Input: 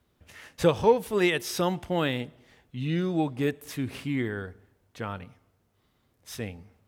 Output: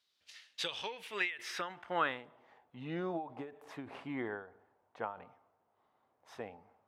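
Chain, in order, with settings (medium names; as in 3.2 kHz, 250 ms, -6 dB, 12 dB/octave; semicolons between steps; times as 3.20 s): band-pass sweep 4.4 kHz -> 830 Hz, 0.33–2.60 s; endings held to a fixed fall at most 120 dB/s; trim +5.5 dB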